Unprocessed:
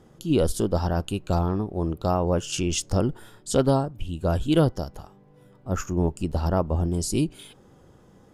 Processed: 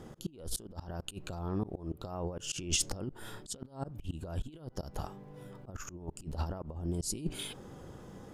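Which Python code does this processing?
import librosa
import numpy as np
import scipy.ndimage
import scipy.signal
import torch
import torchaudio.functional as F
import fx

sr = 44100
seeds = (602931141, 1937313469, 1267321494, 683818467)

y = fx.over_compress(x, sr, threshold_db=-29.0, ratio=-0.5)
y = fx.auto_swell(y, sr, attack_ms=224.0)
y = F.gain(torch.from_numpy(y), -1.5).numpy()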